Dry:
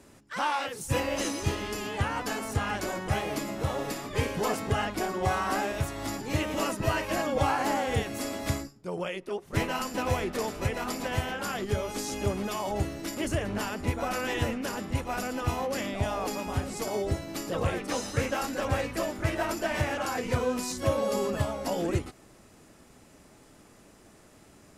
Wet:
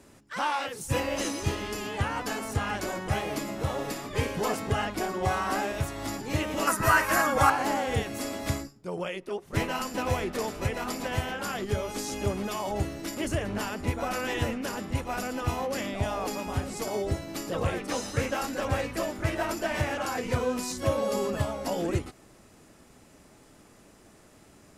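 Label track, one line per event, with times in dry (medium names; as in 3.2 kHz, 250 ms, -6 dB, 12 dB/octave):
6.670000	7.500000	FFT filter 600 Hz 0 dB, 1.4 kHz +14 dB, 3 kHz 0 dB, 11 kHz +12 dB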